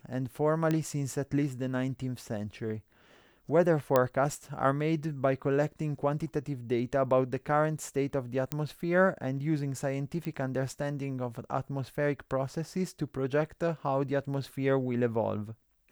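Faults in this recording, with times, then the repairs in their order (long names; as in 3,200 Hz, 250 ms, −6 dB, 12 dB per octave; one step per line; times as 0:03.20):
0:00.71: click −17 dBFS
0:03.96: click −11 dBFS
0:08.52: click −15 dBFS
0:10.25: click −22 dBFS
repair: click removal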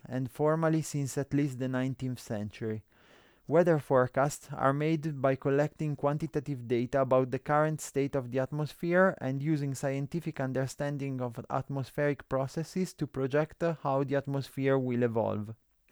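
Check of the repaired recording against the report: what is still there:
none of them is left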